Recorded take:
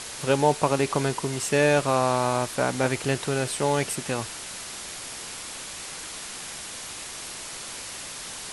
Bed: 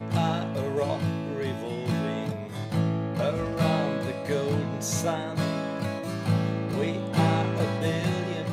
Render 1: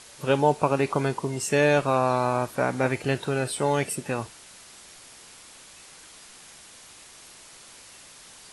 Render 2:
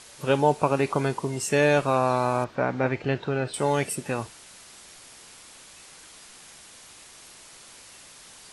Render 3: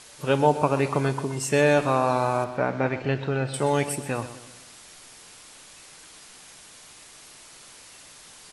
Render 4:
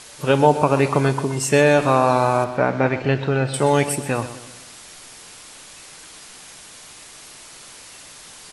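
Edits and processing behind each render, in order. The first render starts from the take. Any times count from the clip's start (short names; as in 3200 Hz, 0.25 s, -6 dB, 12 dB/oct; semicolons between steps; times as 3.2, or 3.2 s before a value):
noise print and reduce 11 dB
2.44–3.54 air absorption 180 m
feedback echo 0.126 s, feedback 45%, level -13.5 dB; shoebox room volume 3000 m³, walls furnished, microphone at 0.43 m
gain +6 dB; limiter -3 dBFS, peak gain reduction 2.5 dB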